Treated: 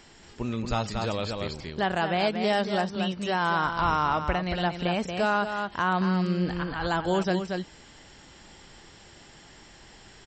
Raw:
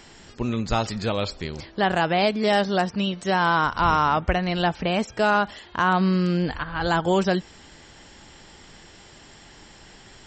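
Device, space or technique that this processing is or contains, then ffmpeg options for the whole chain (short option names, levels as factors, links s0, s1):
ducked delay: -filter_complex "[0:a]asplit=3[s0][s1][s2];[s1]adelay=231,volume=0.794[s3];[s2]apad=whole_len=462740[s4];[s3][s4]sidechaincompress=threshold=0.0708:ratio=8:attack=16:release=510[s5];[s0][s5]amix=inputs=2:normalize=0,volume=0.562"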